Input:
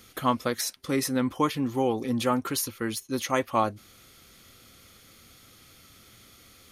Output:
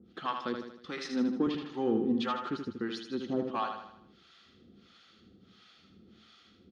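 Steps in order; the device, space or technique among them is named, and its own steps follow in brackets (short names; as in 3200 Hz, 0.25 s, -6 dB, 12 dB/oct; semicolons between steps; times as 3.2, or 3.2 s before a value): guitar amplifier with harmonic tremolo (harmonic tremolo 1.5 Hz, depth 100%, crossover 630 Hz; soft clip -19 dBFS, distortion -19 dB; speaker cabinet 86–4200 Hz, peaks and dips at 120 Hz -9 dB, 200 Hz +9 dB, 360 Hz +5 dB, 580 Hz -8 dB, 1000 Hz -7 dB, 2200 Hz -9 dB); 1.04–1.47 HPF 180 Hz 24 dB/oct; feedback echo 78 ms, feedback 48%, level -6 dB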